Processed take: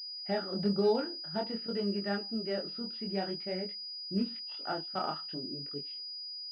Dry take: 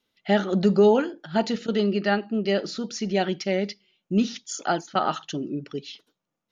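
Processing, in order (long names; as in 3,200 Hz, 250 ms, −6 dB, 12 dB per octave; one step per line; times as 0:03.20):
chorus effect 0.5 Hz, delay 20 ms, depth 6.3 ms
switching amplifier with a slow clock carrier 4,900 Hz
level −8 dB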